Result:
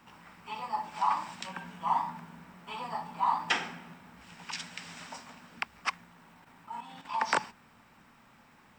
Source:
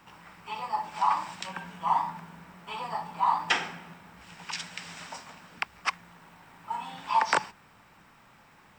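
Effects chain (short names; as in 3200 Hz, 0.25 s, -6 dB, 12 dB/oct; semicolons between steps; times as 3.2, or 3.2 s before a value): bell 240 Hz +8.5 dB 0.28 oct; 6.04–7.21 level quantiser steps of 9 dB; gain -3 dB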